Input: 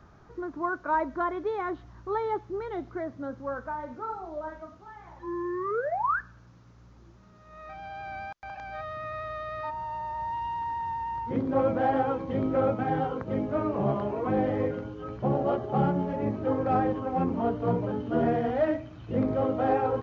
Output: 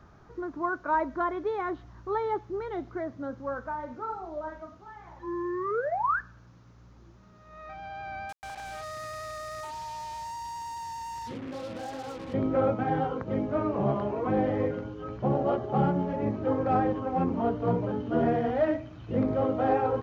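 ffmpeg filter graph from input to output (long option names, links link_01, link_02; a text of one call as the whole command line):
ffmpeg -i in.wav -filter_complex "[0:a]asettb=1/sr,asplit=3[link_01][link_02][link_03];[link_01]atrim=end=8.294[link_04];[link_02]atrim=start=8.29:end=12.34,asetpts=PTS-STARTPTS,afade=type=in:duration=0.004:curve=qsin,afade=type=out:start_time=4.046:duration=0.004:curve=qsin,acompressor=threshold=-35dB:ratio=6:attack=3.2:release=140:knee=1:detection=peak,acrusher=bits=6:mix=0:aa=0.5[link_05];[link_03]atrim=start=12.336[link_06];[link_04][link_05]acrossfade=duration=0.004:curve1=hsin:curve2=qsin[link_07];[link_07][link_06]acrossfade=duration=0.004:curve1=qsin:curve2=hsin" out.wav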